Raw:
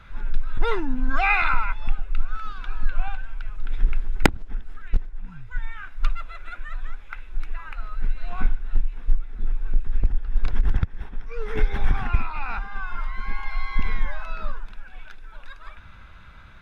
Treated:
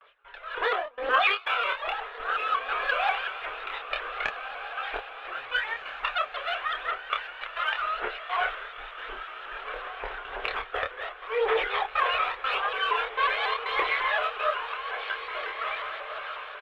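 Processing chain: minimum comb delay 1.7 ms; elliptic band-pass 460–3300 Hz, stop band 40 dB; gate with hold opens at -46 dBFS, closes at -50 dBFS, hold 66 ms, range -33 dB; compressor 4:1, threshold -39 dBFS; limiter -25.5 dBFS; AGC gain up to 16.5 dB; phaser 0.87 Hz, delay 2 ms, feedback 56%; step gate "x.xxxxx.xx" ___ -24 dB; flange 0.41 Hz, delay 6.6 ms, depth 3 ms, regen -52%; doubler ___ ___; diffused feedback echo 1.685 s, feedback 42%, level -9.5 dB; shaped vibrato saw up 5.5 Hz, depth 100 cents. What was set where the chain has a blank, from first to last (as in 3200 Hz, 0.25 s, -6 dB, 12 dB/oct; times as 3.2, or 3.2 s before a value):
123 bpm, 27 ms, -4.5 dB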